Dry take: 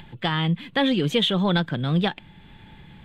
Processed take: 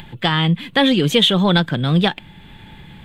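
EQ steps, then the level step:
high-shelf EQ 5,300 Hz +8 dB
+6.0 dB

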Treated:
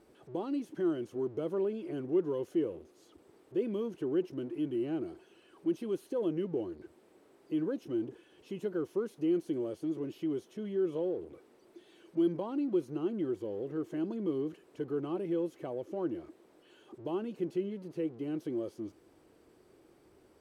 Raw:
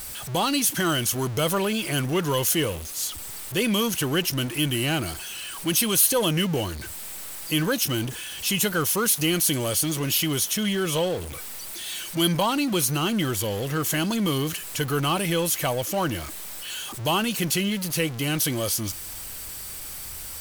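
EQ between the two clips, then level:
resonant band-pass 360 Hz, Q 3.5
−1.5 dB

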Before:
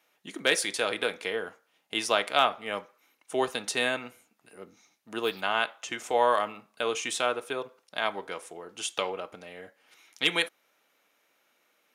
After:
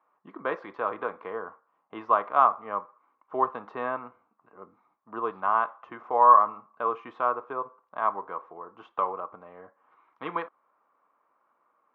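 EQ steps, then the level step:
low-pass with resonance 1,100 Hz, resonance Q 8.5
high-frequency loss of the air 170 metres
−4.0 dB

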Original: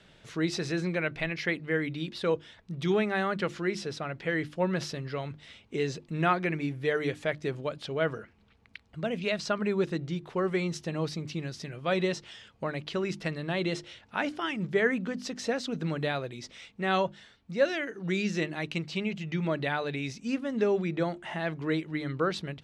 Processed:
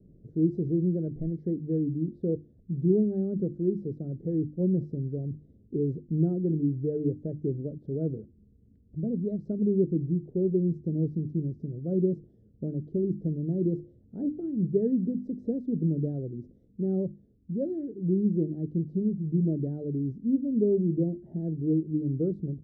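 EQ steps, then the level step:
inverse Chebyshev low-pass filter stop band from 980 Hz, stop band 50 dB
+6.0 dB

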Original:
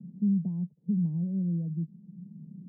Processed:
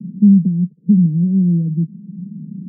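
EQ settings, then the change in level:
high-pass filter 160 Hz 12 dB per octave
low-pass with resonance 470 Hz, resonance Q 3.6
low shelf with overshoot 370 Hz +13.5 dB, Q 1.5
0.0 dB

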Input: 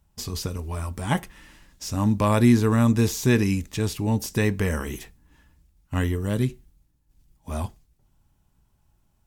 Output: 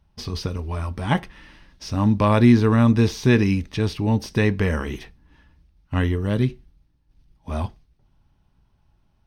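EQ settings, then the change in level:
Savitzky-Golay smoothing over 15 samples
+3.0 dB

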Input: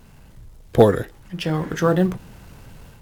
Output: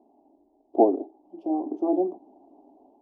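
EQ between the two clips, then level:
elliptic band-pass filter 280–770 Hz, stop band 40 dB
phaser with its sweep stopped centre 490 Hz, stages 6
+3.0 dB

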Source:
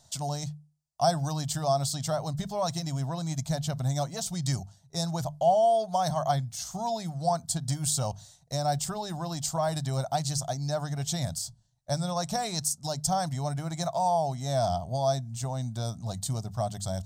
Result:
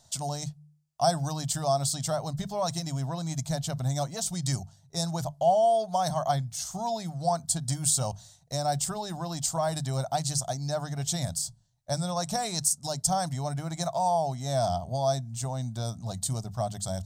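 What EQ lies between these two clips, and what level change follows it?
mains-hum notches 50/100/150 Hz
dynamic equaliser 9,000 Hz, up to +5 dB, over −46 dBFS, Q 1.4
0.0 dB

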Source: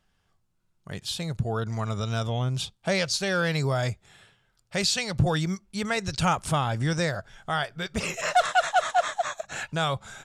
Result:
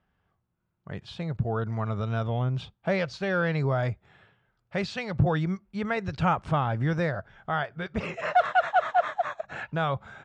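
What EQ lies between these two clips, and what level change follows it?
high-pass filter 44 Hz
low-pass filter 2,000 Hz 12 dB per octave
0.0 dB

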